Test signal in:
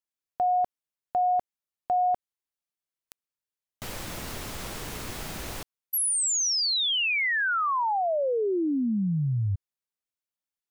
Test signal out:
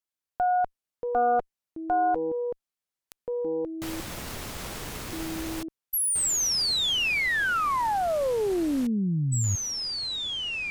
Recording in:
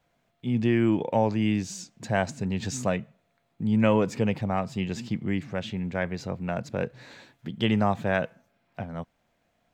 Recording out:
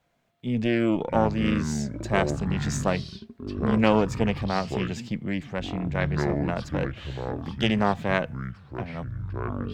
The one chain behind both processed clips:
delay with pitch and tempo change per echo 434 ms, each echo −7 semitones, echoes 2, each echo −6 dB
harmonic generator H 2 −8 dB, 6 −27 dB, 8 −38 dB, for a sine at −8 dBFS

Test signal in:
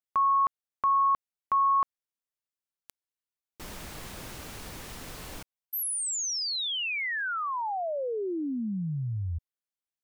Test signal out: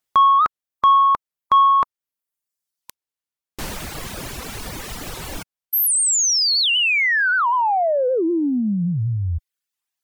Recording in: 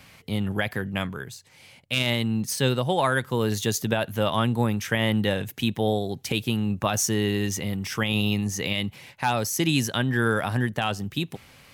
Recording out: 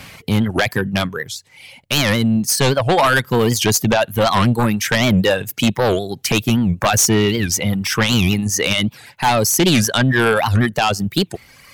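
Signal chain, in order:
reverb reduction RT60 1.4 s
in parallel at −3.5 dB: sine wavefolder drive 11 dB, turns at −9 dBFS
on the sum: wow of a warped record 78 rpm, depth 250 cents

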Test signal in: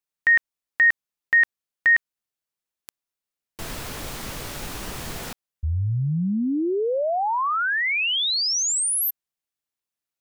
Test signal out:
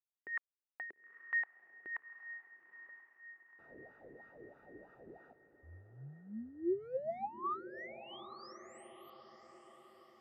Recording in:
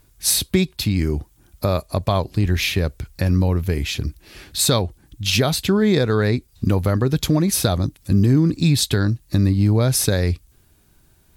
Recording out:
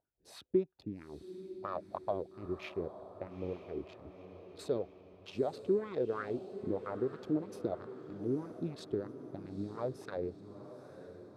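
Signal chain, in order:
adaptive Wiener filter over 41 samples
LFO wah 3.1 Hz 360–1,300 Hz, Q 3.9
feedback delay with all-pass diffusion 900 ms, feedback 53%, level −12 dB
level −5.5 dB

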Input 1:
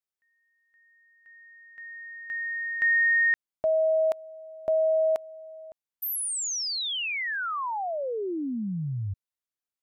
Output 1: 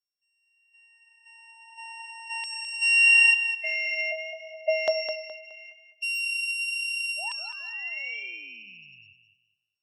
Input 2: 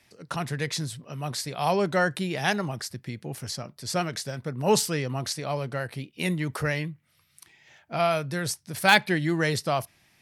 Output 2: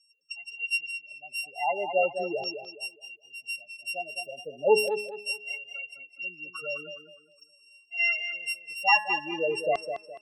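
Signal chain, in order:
samples sorted by size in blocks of 16 samples
spectral peaks only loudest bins 8
auto-filter high-pass saw down 0.41 Hz 420–5,400 Hz
hum removal 212.4 Hz, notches 12
on a send: tape delay 208 ms, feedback 33%, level −7.5 dB, low-pass 4,500 Hz

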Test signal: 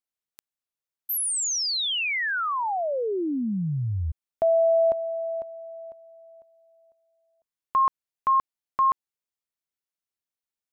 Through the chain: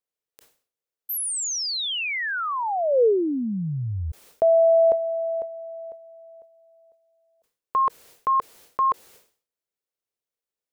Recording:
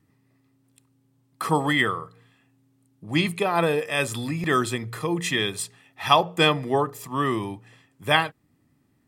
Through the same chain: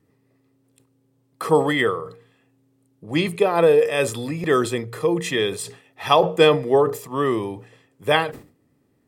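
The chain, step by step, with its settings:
parametric band 470 Hz +11.5 dB 0.74 octaves
level that may fall only so fast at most 130 dB per second
level −1 dB

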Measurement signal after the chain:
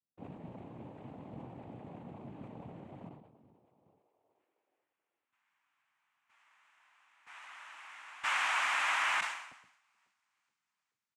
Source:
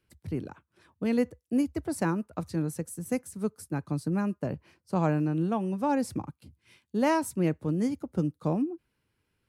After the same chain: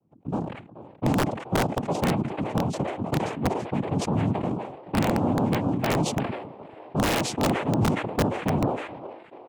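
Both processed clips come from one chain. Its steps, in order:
on a send: echo with shifted repeats 427 ms, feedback 62%, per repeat +140 Hz, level −20.5 dB
on the sum: low-pass that shuts in the quiet parts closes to 480 Hz, open at −24 dBFS
cochlear-implant simulation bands 4
in parallel at 0 dB: downward compressor 16 to 1, threshold −39 dBFS
on the sum: wrap-around overflow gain 16.5 dB
tilt shelving filter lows +3.5 dB
level that may fall only so fast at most 70 dB per second

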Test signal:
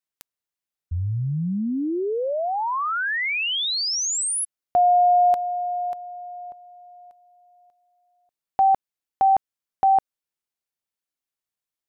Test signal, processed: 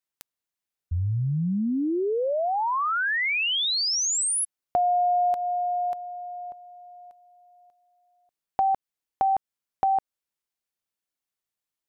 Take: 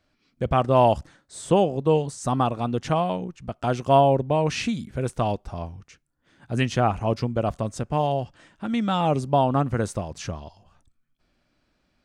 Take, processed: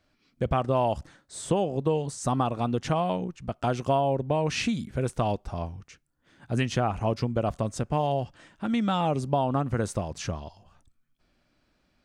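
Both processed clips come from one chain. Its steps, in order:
downward compressor 5 to 1, threshold −21 dBFS

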